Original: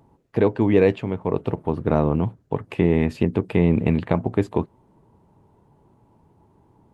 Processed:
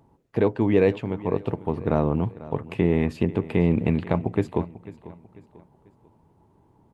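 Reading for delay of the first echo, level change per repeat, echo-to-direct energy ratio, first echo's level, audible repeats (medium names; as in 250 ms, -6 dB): 494 ms, -8.0 dB, -17.0 dB, -17.5 dB, 3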